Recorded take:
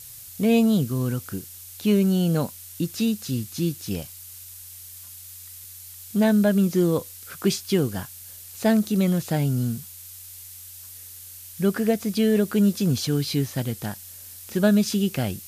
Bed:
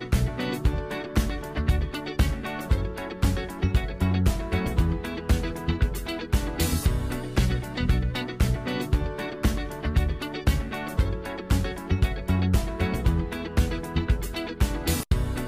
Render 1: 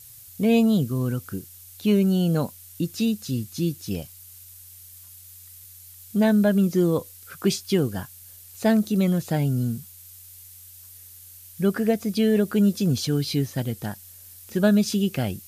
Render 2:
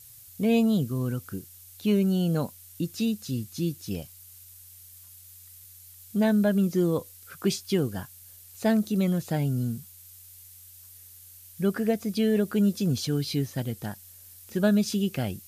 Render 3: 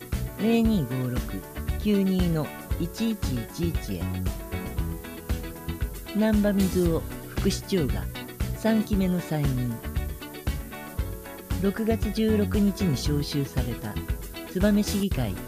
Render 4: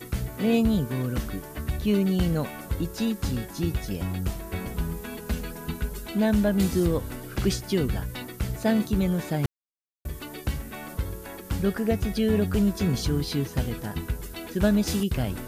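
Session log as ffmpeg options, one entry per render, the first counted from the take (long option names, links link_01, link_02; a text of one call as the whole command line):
ffmpeg -i in.wav -af "afftdn=noise_reduction=6:noise_floor=-42" out.wav
ffmpeg -i in.wav -af "volume=-3.5dB" out.wav
ffmpeg -i in.wav -i bed.wav -filter_complex "[1:a]volume=-6.5dB[link_01];[0:a][link_01]amix=inputs=2:normalize=0" out.wav
ffmpeg -i in.wav -filter_complex "[0:a]asettb=1/sr,asplit=3[link_01][link_02][link_03];[link_01]atrim=end=4.744[link_04];[link_02]atrim=start=4.74:end=6.09,asetpts=PTS-STARTPTS,afade=type=in:duration=0.004:curve=qsin,afade=type=out:start_time=1.346:duration=0.004:curve=qsin,aecho=1:1:4.8:0.61,atrim=end_sample=59535[link_05];[link_03]atrim=start=6.086[link_06];[link_04][link_05]acrossfade=duration=0.004:curve1=hsin:curve2=qsin[link_07];[link_07][link_06]acrossfade=duration=0.004:curve1=qsin:curve2=hsin,asplit=3[link_08][link_09][link_10];[link_08]atrim=end=9.46,asetpts=PTS-STARTPTS,afade=type=out:start_time=9.456:duration=0.004:curve=hsin[link_11];[link_09]atrim=start=9.46:end=10.05,asetpts=PTS-STARTPTS,volume=0[link_12];[link_10]atrim=start=10.05,asetpts=PTS-STARTPTS,afade=type=in:duration=0.004:curve=hsin[link_13];[link_11][link_12][link_13]concat=n=3:v=0:a=1" out.wav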